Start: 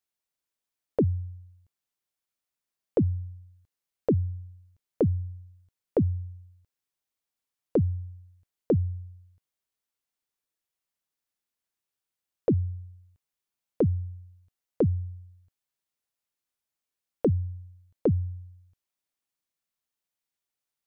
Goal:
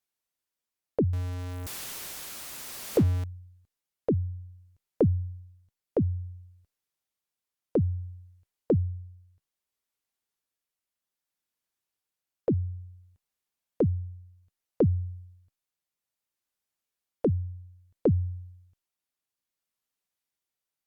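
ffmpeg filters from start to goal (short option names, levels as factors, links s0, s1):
-filter_complex "[0:a]asettb=1/sr,asplit=3[s0][s1][s2];[s0]atrim=end=1.134[s3];[s1]atrim=start=1.13:end=3.24,asetpts=PTS-STARTPTS,afade=t=in:d=0.004:c=qsin,afade=t=out:st=2.106:d=0.004:c=qsin,aeval=exprs='val(0)+0.5*0.0282*sgn(val(0))':c=same[s4];[s2]atrim=start=3.236[s5];[s3][s4]acrossfade=d=0.004:c1=hsin:c2=qsin[s6];[s6][s5]acrossfade=d=0.004:c1=qsin:c2=hsin,tremolo=f=0.6:d=0.31,volume=1.12" -ar 48000 -c:a libopus -b:a 64k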